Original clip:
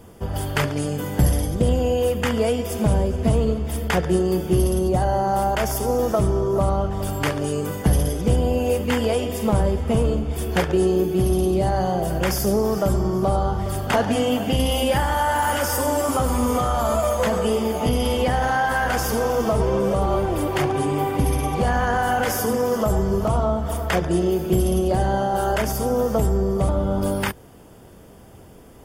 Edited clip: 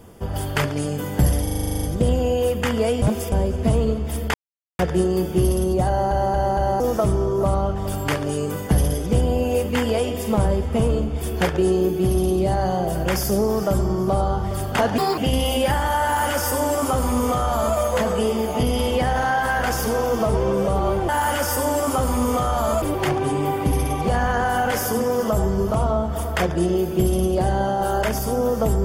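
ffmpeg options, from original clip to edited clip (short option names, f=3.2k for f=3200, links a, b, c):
-filter_complex "[0:a]asplit=22[a][b][c][d][e][f][g][h][i][j][k][l][m][n][o][p][q][r][s][t][u][v];[a]atrim=end=1.472[w];[b]atrim=start=1.428:end=1.472[x];[c]atrim=start=1.428:end=1.472[y];[d]atrim=start=1.428:end=1.472[z];[e]atrim=start=1.428:end=1.472[aa];[f]atrim=start=1.428:end=1.472[ab];[g]atrim=start=1.428:end=1.472[ac];[h]atrim=start=1.428:end=1.472[ad];[i]atrim=start=1.428:end=1.472[ae];[j]atrim=start=1.428:end=1.472[af];[k]atrim=start=1.428:end=2.622[ag];[l]atrim=start=2.618:end=2.922,asetpts=PTS-STARTPTS,areverse[ah];[m]atrim=start=2.918:end=3.94,asetpts=PTS-STARTPTS,afade=t=out:st=1.018:d=0.004:c=hsin,apad=pad_dur=0.45[ai];[n]atrim=start=3.94:end=5.262,asetpts=PTS-STARTPTS,afade=t=in:d=0.004:c=hsin[aj];[o]atrim=start=5.028:end=5.262[ak];[p]atrim=start=5.028:end=5.262[al];[q]atrim=start=5.028:end=5.262[am];[r]atrim=start=5.948:end=14.134[an];[s]atrim=start=14.13:end=14.44,asetpts=PTS-STARTPTS,asetrate=69237,aresample=44100[ao];[t]atrim=start=14.436:end=20.352[ap];[u]atrim=start=15.298:end=17.032[aq];[v]atrim=start=20.348[ar];[w][x]acrossfade=d=0.004:c1=hsin:c2=hsin[as];[as][y]acrossfade=d=0.004:c1=hsin:c2=hsin[at];[at][z]acrossfade=d=0.004:c1=hsin:c2=hsin[au];[au][aa]acrossfade=d=0.004:c1=hsin:c2=hsin[av];[av][ab]acrossfade=d=0.004:c1=hsin:c2=hsin[aw];[aw][ac]acrossfade=d=0.004:c1=hsin:c2=hsin[ax];[ax][ad]acrossfade=d=0.004:c1=hsin:c2=hsin[ay];[ay][ae]acrossfade=d=0.004:c1=hsin:c2=hsin[az];[az][af]acrossfade=d=0.004:c1=hsin:c2=hsin[ba];[ba][ag]acrossfade=d=0.004:c1=hsin:c2=hsin[bb];[bb][ah]acrossfade=d=0.004:c1=hsin:c2=hsin[bc];[ai][aj]concat=n=2:v=0:a=1[bd];[bc][bd]acrossfade=d=0.004:c1=hsin:c2=hsin[be];[be][ak]acrossfade=d=0.004:c1=hsin:c2=hsin[bf];[bf][al]acrossfade=d=0.004:c1=hsin:c2=hsin[bg];[bg][am]acrossfade=d=0.004:c1=hsin:c2=hsin[bh];[bh][an]acrossfade=d=0.004:c1=hsin:c2=hsin[bi];[bi][ao]acrossfade=d=0.004:c1=hsin:c2=hsin[bj];[bj][ap]acrossfade=d=0.004:c1=hsin:c2=hsin[bk];[bk][aq]acrossfade=d=0.004:c1=hsin:c2=hsin[bl];[bl][ar]acrossfade=d=0.004:c1=hsin:c2=hsin"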